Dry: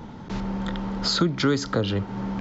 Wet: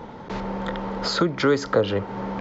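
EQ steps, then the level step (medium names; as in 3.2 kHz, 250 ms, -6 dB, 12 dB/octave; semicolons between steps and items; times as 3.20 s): graphic EQ 500/1000/2000/4000 Hz +11/+6/+6/+3 dB; dynamic bell 3.9 kHz, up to -4 dB, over -38 dBFS, Q 2.3; -4.0 dB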